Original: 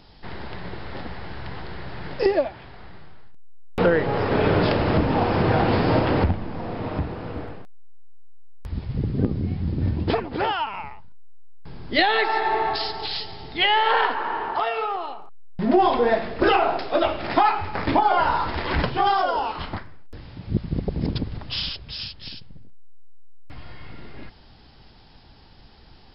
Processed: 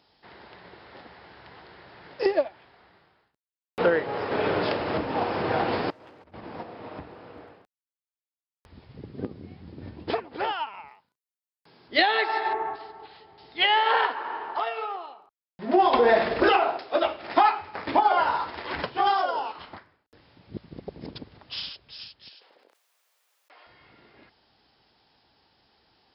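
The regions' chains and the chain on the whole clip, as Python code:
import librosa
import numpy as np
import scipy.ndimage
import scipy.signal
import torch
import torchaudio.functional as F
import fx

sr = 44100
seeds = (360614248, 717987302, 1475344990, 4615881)

y = fx.chain(x, sr, fx.clip_hard(threshold_db=-17.5),
    fx.over_compress(threshold_db=-29.0, ratio=-0.5), at=(5.9, 6.63))
y = fx.chain(y, sr, fx.highpass(hz=150.0, slope=12),
    fx.high_shelf(hz=4000.0, db=9.5), at=(10.88, 11.88))
y = fx.chain(y, sr, fx.lowpass(hz=1500.0, slope=12),
    fx.peak_eq(hz=650.0, db=-4.0, octaves=0.41), at=(12.53, 13.38))
y = fx.chain(y, sr, fx.low_shelf(hz=76.0, db=9.0),
    fx.env_flatten(amount_pct=100), at=(15.93, 16.49))
y = fx.chain(y, sr, fx.highpass(hz=460.0, slope=24),
    fx.high_shelf(hz=3800.0, db=-7.0),
    fx.env_flatten(amount_pct=70), at=(22.29, 23.67))
y = scipy.signal.sosfilt(scipy.signal.butter(2, 67.0, 'highpass', fs=sr, output='sos'), y)
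y = fx.bass_treble(y, sr, bass_db=-11, treble_db=0)
y = fx.upward_expand(y, sr, threshold_db=-34.0, expansion=1.5)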